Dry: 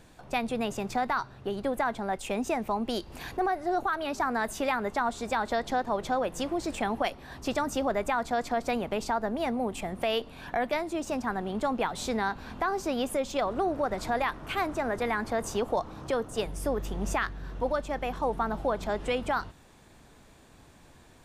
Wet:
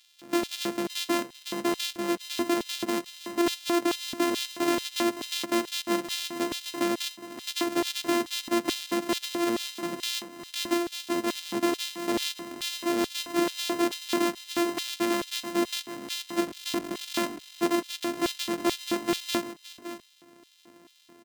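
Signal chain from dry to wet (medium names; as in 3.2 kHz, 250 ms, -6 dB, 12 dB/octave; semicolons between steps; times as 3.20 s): sorted samples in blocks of 128 samples; delay 565 ms -13 dB; LFO high-pass square 2.3 Hz 260–3500 Hz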